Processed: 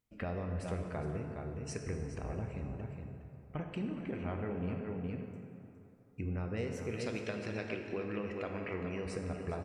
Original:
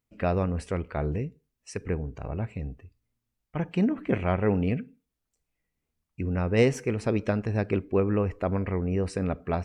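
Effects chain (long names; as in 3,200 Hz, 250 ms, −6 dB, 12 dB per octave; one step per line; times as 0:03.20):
0:06.91–0:09.06: meter weighting curve D
single-tap delay 413 ms −11 dB
downward compressor 6 to 1, threshold −34 dBFS, peak gain reduction 17 dB
dense smooth reverb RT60 2.9 s, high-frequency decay 0.55×, DRR 3 dB
level −3 dB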